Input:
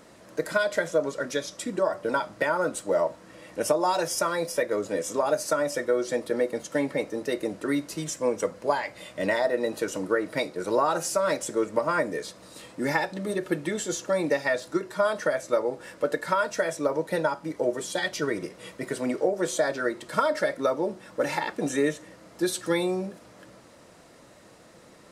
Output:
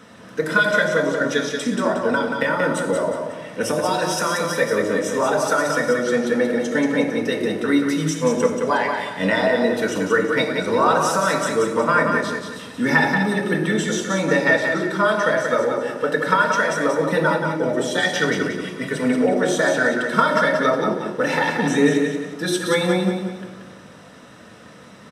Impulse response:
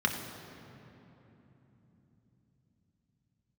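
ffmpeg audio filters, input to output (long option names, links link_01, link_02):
-filter_complex "[0:a]asettb=1/sr,asplit=3[link_01][link_02][link_03];[link_01]atrim=end=2.034[link_04];[link_02]atrim=start=2.03:end=4.41,asetpts=PTS-STARTPTS,afade=type=in:duration=0.004:curve=qsin,afade=type=out:start_time=2.376:duration=0.004:curve=qsin,acrossover=split=480|3000[link_05][link_06][link_07];[link_06]acompressor=threshold=-28dB:ratio=6[link_08];[link_05][link_08][link_07]amix=inputs=3:normalize=0[link_09];[link_03]atrim=start=4.406[link_10];[link_04][link_09]acrossfade=duration=0.004:curve1=hsin:curve2=qsin[link_11];[link_11][link_10]acrossfade=duration=0.004:curve1=qsin:curve2=hsin,aecho=1:1:181|362|543|724|905:0.562|0.208|0.077|0.0285|0.0105[link_12];[1:a]atrim=start_sample=2205,atrim=end_sample=6174[link_13];[link_12][link_13]afir=irnorm=-1:irlink=0,volume=-1dB"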